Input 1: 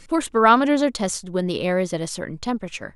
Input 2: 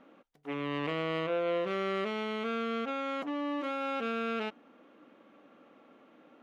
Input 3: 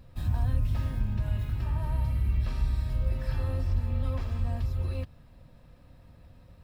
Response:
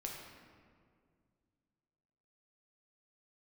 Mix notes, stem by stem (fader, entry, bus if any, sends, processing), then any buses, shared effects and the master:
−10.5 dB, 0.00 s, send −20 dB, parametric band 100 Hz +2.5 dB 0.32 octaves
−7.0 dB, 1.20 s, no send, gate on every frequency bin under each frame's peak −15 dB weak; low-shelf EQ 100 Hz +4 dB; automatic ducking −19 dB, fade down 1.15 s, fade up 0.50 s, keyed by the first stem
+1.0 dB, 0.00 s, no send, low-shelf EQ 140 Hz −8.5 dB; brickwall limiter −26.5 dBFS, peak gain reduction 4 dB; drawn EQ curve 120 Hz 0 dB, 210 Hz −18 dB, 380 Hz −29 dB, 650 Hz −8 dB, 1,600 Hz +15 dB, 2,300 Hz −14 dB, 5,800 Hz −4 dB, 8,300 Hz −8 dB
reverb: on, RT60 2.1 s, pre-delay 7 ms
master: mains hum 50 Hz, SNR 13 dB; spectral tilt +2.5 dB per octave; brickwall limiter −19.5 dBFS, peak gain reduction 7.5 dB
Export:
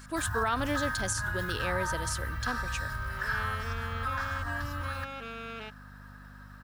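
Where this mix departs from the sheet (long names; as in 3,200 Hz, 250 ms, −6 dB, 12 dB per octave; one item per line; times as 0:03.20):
stem 2: missing gate on every frequency bin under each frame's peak −15 dB weak
stem 3 +1.0 dB → +7.5 dB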